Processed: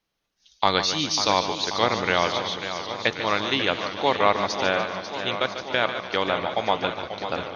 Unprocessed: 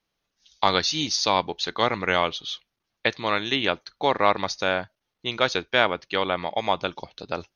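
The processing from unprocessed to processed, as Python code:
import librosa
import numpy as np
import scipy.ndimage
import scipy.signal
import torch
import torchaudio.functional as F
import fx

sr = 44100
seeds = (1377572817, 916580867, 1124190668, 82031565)

y = fx.level_steps(x, sr, step_db=22, at=(5.35, 6.14))
y = fx.echo_feedback(y, sr, ms=146, feedback_pct=49, wet_db=-10)
y = fx.echo_warbled(y, sr, ms=540, feedback_pct=70, rate_hz=2.8, cents=112, wet_db=-10)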